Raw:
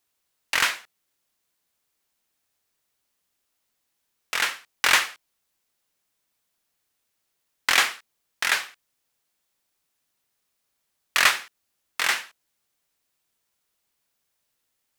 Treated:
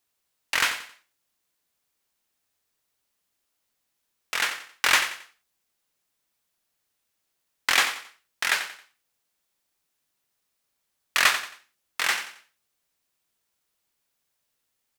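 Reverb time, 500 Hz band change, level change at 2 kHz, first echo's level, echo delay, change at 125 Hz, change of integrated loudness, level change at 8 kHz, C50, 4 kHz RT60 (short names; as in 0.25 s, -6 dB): none, -1.0 dB, -1.0 dB, -11.5 dB, 90 ms, n/a, -1.5 dB, -1.0 dB, none, none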